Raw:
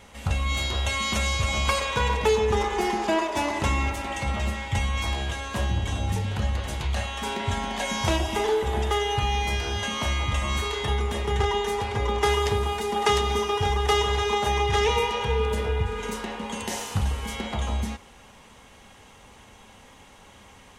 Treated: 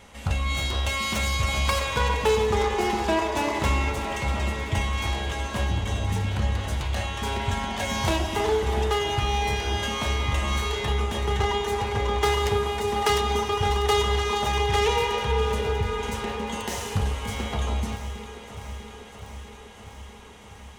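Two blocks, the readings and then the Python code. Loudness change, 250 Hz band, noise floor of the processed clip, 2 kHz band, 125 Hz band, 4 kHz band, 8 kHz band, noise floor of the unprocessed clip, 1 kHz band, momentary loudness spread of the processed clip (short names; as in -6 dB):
+0.5 dB, +0.5 dB, -44 dBFS, 0.0 dB, +0.5 dB, 0.0 dB, 0.0 dB, -51 dBFS, +0.5 dB, 14 LU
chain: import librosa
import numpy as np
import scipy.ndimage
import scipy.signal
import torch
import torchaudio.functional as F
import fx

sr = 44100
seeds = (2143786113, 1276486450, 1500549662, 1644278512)

y = fx.self_delay(x, sr, depth_ms=0.099)
y = fx.echo_alternate(y, sr, ms=323, hz=1600.0, feedback_pct=84, wet_db=-11)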